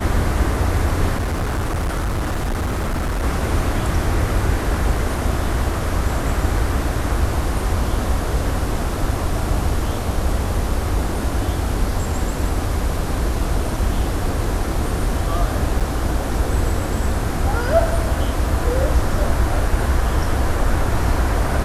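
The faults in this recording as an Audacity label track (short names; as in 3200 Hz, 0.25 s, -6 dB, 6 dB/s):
1.180000	3.240000	clipped -18 dBFS
15.800000	15.810000	gap 6.8 ms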